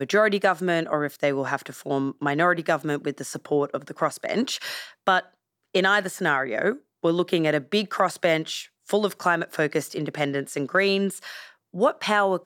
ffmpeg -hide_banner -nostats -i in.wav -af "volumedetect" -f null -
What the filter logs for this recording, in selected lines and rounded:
mean_volume: -24.7 dB
max_volume: -6.2 dB